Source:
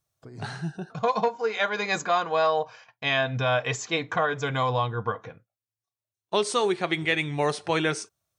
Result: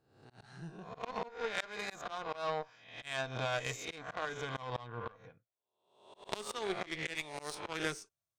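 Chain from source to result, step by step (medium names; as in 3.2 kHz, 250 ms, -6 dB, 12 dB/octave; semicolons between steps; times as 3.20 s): reverse spectral sustain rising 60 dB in 0.70 s; 7.15–7.55 s: tone controls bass -15 dB, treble +8 dB; Chebyshev shaper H 2 -37 dB, 3 -11 dB, 8 -38 dB, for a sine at -7 dBFS; slow attack 186 ms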